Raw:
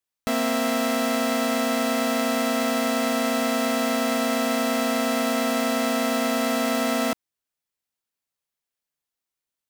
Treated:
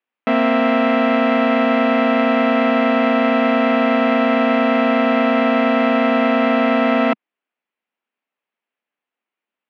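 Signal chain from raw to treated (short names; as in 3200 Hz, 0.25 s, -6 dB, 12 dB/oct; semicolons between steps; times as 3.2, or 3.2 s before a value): elliptic band-pass 220–2700 Hz, stop band 70 dB; gain +8.5 dB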